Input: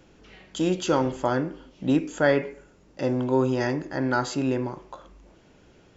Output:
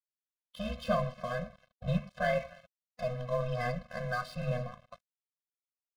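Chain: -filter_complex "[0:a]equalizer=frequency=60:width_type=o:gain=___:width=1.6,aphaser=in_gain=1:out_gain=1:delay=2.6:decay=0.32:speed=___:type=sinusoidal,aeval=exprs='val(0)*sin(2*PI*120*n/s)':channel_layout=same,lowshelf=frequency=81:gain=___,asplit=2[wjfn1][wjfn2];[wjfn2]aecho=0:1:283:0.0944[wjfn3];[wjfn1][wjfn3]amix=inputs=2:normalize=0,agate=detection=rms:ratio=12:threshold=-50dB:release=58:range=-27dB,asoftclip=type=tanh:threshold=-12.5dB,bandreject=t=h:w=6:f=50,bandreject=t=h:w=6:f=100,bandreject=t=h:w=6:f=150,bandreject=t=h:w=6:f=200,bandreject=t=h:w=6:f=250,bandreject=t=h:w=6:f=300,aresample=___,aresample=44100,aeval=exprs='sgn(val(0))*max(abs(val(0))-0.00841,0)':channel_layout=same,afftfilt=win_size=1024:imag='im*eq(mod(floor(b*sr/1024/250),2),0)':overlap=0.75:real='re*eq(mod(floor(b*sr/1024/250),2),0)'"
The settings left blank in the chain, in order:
-12.5, 1.1, -2.5, 11025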